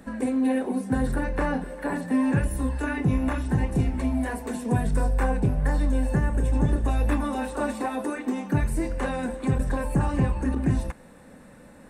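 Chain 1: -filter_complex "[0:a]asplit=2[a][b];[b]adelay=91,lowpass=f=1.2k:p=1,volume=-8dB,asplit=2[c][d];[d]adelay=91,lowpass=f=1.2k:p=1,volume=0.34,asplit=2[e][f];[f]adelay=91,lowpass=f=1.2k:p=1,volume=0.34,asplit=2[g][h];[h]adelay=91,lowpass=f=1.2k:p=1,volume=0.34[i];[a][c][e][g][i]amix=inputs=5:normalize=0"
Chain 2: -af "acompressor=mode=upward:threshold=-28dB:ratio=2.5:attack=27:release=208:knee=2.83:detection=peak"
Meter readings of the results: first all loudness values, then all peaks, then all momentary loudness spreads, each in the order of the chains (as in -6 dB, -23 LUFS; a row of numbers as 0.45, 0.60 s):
-25.5, -26.0 LUFS; -9.0, -5.0 dBFS; 6, 6 LU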